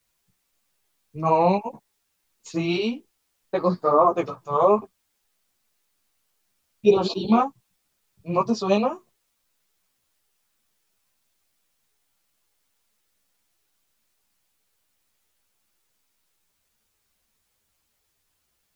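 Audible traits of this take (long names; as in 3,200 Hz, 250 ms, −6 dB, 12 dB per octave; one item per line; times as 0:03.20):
a quantiser's noise floor 12 bits, dither triangular
a shimmering, thickened sound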